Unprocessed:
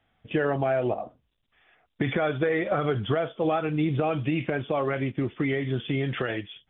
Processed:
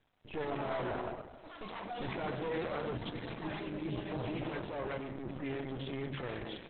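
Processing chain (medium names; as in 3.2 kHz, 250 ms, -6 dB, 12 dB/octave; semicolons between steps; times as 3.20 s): 3.97–5.10 s: bass shelf 94 Hz +11.5 dB; on a send at -9.5 dB: reverberation RT60 0.90 s, pre-delay 91 ms; on the sum: compression 2.5:1, threshold -35 dBFS, peak gain reduction 11.5 dB; dynamic bell 490 Hz, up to +3 dB, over -46 dBFS, Q 1.8; half-wave rectifier; feedback echo behind a high-pass 756 ms, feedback 35%, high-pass 1.9 kHz, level -24 dB; transient shaper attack -7 dB, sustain +7 dB; 2.95–4.11 s: spectral selection erased 380–1500 Hz; in parallel at -5 dB: saturation -32 dBFS, distortion -14 dB; on the sum: ever faster or slower copies 271 ms, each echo +7 st, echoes 2, each echo -6 dB; trim -1 dB; Opus 8 kbps 48 kHz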